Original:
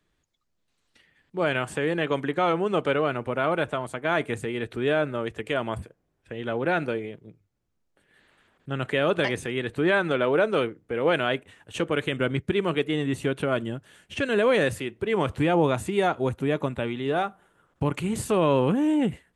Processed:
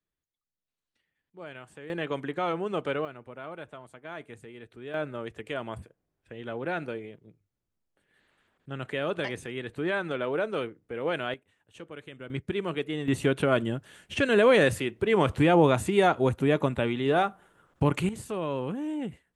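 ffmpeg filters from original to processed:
-af "asetnsamples=n=441:p=0,asendcmd='1.9 volume volume -6dB;3.05 volume volume -16dB;4.94 volume volume -7dB;11.34 volume volume -17.5dB;12.3 volume volume -6dB;13.08 volume volume 1.5dB;18.09 volume volume -10dB',volume=-18dB"

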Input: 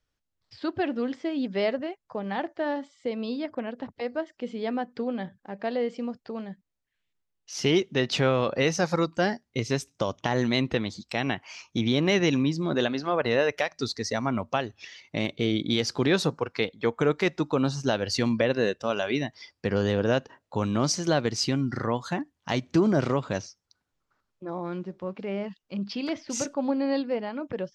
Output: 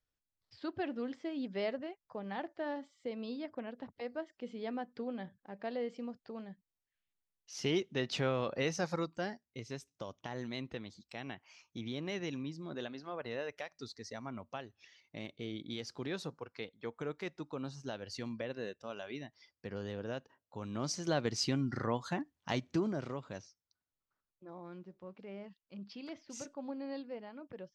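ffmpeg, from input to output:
-af "volume=-0.5dB,afade=t=out:st=8.87:d=0.59:silence=0.473151,afade=t=in:st=20.61:d=0.73:silence=0.334965,afade=t=out:st=22.49:d=0.5:silence=0.375837"

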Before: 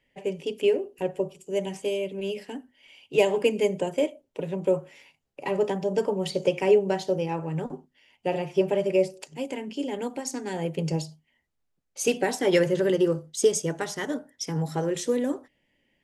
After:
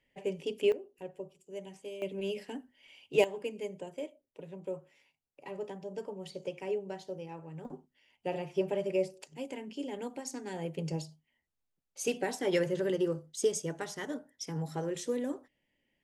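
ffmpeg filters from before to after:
-af "asetnsamples=n=441:p=0,asendcmd='0.72 volume volume -15dB;2.02 volume volume -4.5dB;3.24 volume volume -15dB;7.65 volume volume -8dB',volume=-5dB"

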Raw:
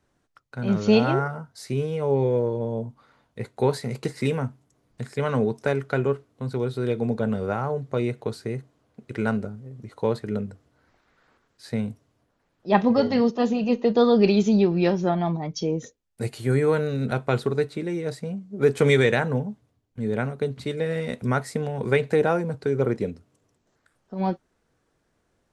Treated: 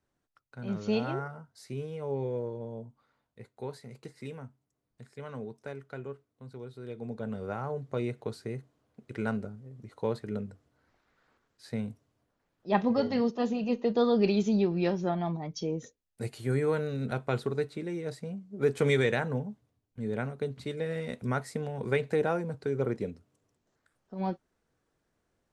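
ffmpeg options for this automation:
-af "volume=-1dB,afade=t=out:st=2.45:d=1.1:silence=0.501187,afade=t=in:st=6.84:d=0.99:silence=0.316228"

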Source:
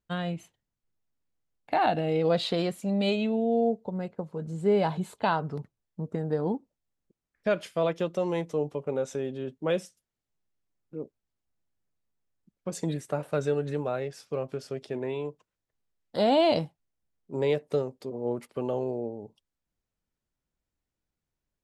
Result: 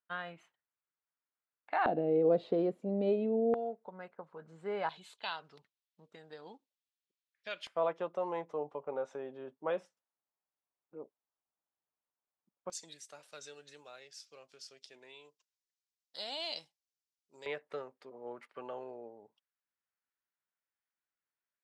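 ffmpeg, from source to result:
-af "asetnsamples=n=441:p=0,asendcmd='1.86 bandpass f 400;3.54 bandpass f 1400;4.89 bandpass f 3500;7.67 bandpass f 950;12.7 bandpass f 5400;17.46 bandpass f 1600',bandpass=f=1.4k:t=q:w=1.6:csg=0"

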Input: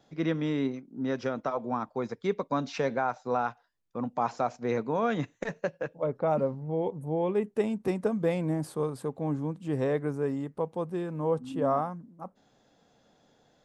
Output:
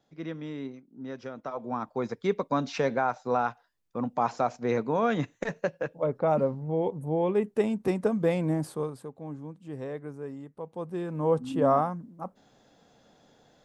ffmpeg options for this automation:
-af "volume=14.5dB,afade=t=in:st=1.36:d=0.7:silence=0.316228,afade=t=out:st=8.58:d=0.51:silence=0.298538,afade=t=in:st=10.61:d=0.8:silence=0.237137"

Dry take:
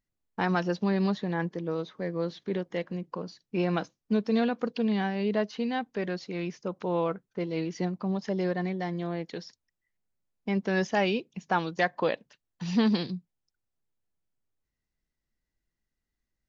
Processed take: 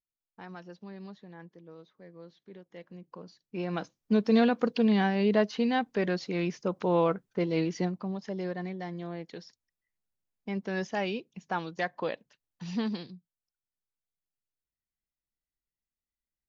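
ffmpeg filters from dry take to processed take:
-af "volume=3dB,afade=t=in:st=2.62:d=1.07:silence=0.251189,afade=t=in:st=3.69:d=0.63:silence=0.354813,afade=t=out:st=7.62:d=0.5:silence=0.375837,afade=t=out:st=12.67:d=0.49:silence=0.421697"

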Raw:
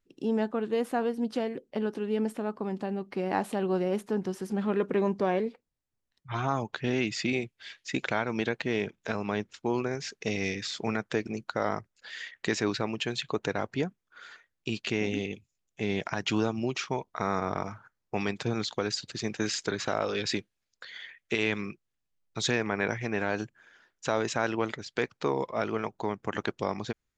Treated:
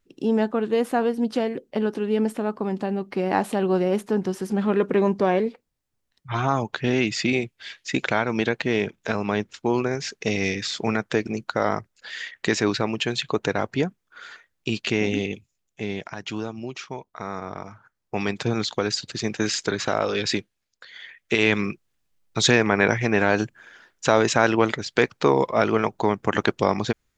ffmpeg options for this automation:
-af "volume=26.5dB,afade=t=out:st=15.32:d=0.77:silence=0.334965,afade=t=in:st=17.7:d=0.69:silence=0.354813,afade=t=out:st=20.34:d=0.55:silence=0.446684,afade=t=in:st=20.89:d=0.71:silence=0.281838"

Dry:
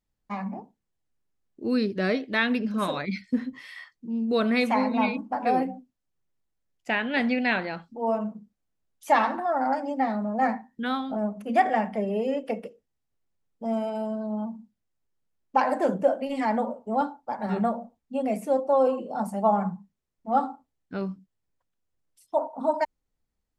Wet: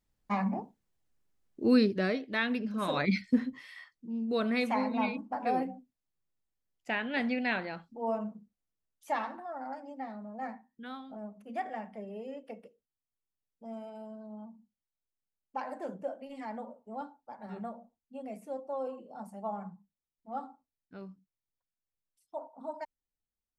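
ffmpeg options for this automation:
-af "volume=11.5dB,afade=t=out:st=1.72:d=0.4:silence=0.375837,afade=t=in:st=2.84:d=0.22:silence=0.334965,afade=t=out:st=3.06:d=0.6:silence=0.334965,afade=t=out:st=8.23:d=1.24:silence=0.375837"

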